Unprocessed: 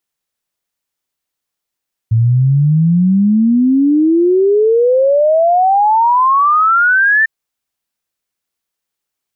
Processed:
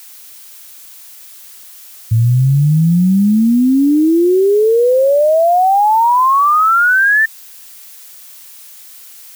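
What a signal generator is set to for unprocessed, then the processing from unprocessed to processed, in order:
exponential sine sweep 110 Hz → 1,800 Hz 5.15 s −7.5 dBFS
background noise blue −37 dBFS

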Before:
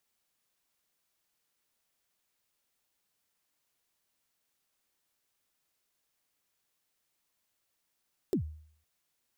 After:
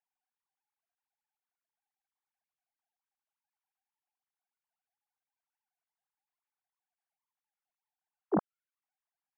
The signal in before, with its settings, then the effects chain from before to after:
synth kick length 0.51 s, from 430 Hz, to 77 Hz, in 97 ms, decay 0.58 s, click on, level −23 dB
three sine waves on the formant tracks
low-pass filter 2,200 Hz
parametric band 720 Hz +7 dB 1.9 octaves

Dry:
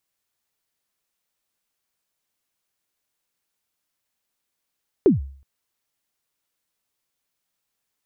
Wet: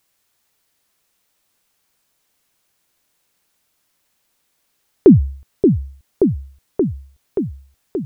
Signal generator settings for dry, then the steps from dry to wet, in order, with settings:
synth kick length 0.37 s, from 440 Hz, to 68 Hz, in 143 ms, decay 0.50 s, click off, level −8 dB
on a send: echo whose low-pass opens from repeat to repeat 578 ms, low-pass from 400 Hz, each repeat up 1 octave, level −6 dB
on the sum: boost into a limiter +12 dB

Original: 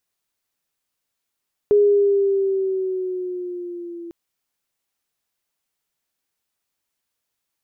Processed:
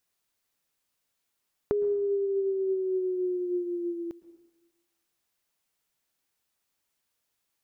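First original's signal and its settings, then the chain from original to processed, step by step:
pitch glide with a swell sine, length 2.40 s, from 414 Hz, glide −3.5 semitones, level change −21 dB, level −10.5 dB
downward compressor 6 to 1, threshold −27 dBFS
dense smooth reverb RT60 1.1 s, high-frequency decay 0.85×, pre-delay 100 ms, DRR 15 dB

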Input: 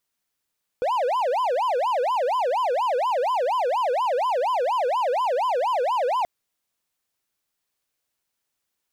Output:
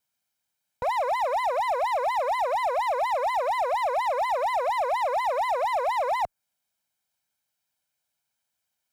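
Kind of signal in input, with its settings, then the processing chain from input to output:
siren wail 480–1,030 Hz 4.2 per second triangle −18 dBFS 5.43 s
lower of the sound and its delayed copy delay 1.3 ms
high-pass filter 75 Hz 12 dB per octave
dynamic equaliser 3,600 Hz, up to −6 dB, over −47 dBFS, Q 0.87

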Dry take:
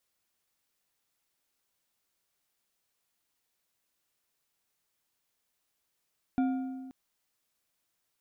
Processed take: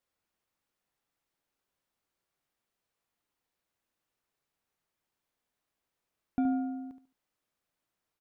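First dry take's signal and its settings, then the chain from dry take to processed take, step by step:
struck metal bar, length 0.53 s, lowest mode 262 Hz, decay 1.58 s, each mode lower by 10 dB, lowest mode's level −23 dB
high-shelf EQ 2,800 Hz −11 dB
on a send: repeating echo 72 ms, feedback 27%, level −9.5 dB

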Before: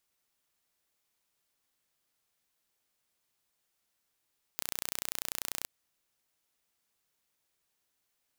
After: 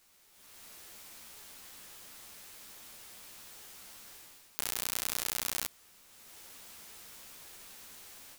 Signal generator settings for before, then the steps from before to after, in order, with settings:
impulse train 30.2 per second, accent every 0, −7 dBFS 1.07 s
compressor on every frequency bin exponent 0.6
automatic gain control gain up to 15 dB
string-ensemble chorus

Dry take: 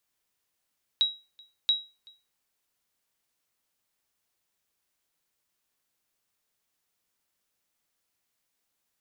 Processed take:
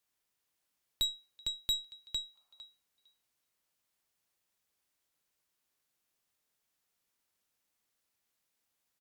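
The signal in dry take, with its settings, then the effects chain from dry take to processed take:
ping with an echo 3,850 Hz, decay 0.29 s, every 0.68 s, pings 2, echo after 0.38 s, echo −28 dB −16 dBFS
repeating echo 455 ms, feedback 15%, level −6.5 dB
tube saturation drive 26 dB, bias 0.65
gain on a spectral selection 0:02.35–0:02.65, 540–1,400 Hz +10 dB

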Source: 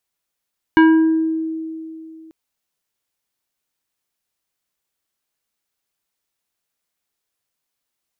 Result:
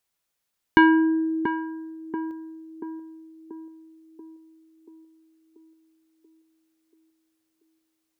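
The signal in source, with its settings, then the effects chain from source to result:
two-operator FM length 1.54 s, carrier 321 Hz, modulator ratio 4.02, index 0.87, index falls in 0.91 s exponential, decay 2.78 s, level −6 dB
dynamic equaliser 310 Hz, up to −6 dB, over −26 dBFS, Q 4.6
on a send: feedback echo with a band-pass in the loop 684 ms, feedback 61%, band-pass 420 Hz, level −5 dB

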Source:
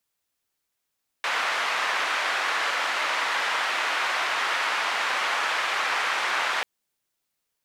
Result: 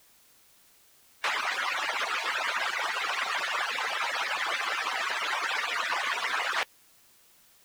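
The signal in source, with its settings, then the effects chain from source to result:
band-limited noise 960–1,800 Hz, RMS −26 dBFS 5.39 s
harmonic-percussive split with one part muted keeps percussive
bit-depth reduction 10 bits, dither triangular

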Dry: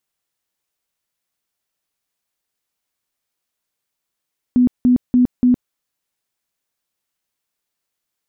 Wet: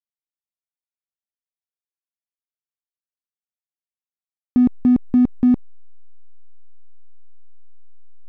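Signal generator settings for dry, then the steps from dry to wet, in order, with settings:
tone bursts 248 Hz, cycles 28, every 0.29 s, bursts 4, −9 dBFS
slack as between gear wheels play −26 dBFS

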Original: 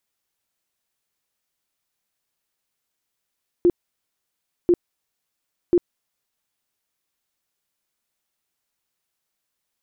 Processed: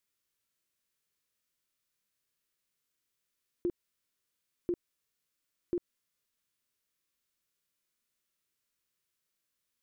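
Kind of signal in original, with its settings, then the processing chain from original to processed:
tone bursts 350 Hz, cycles 17, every 1.04 s, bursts 3, −11.5 dBFS
parametric band 780 Hz −11.5 dB 0.5 octaves
harmonic and percussive parts rebalanced percussive −11 dB
downward compressor, threshold −30 dBFS

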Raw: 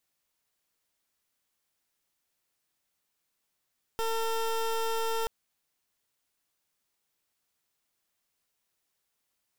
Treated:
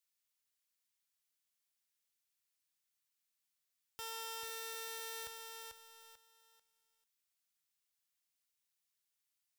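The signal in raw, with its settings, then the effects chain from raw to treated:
pulse wave 452 Hz, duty 21% −29.5 dBFS 1.28 s
high-pass filter 60 Hz 12 dB per octave
guitar amp tone stack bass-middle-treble 5-5-5
feedback echo at a low word length 442 ms, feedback 35%, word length 12 bits, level −4.5 dB

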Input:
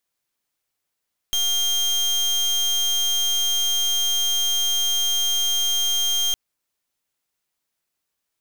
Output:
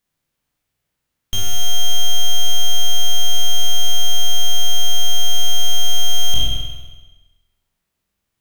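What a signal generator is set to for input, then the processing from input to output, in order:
pulse wave 3,200 Hz, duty 30% −21 dBFS 5.01 s
peak hold with a decay on every bin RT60 1.05 s
bass and treble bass +12 dB, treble −2 dB
spring reverb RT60 1.1 s, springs 47 ms, chirp 40 ms, DRR 0.5 dB

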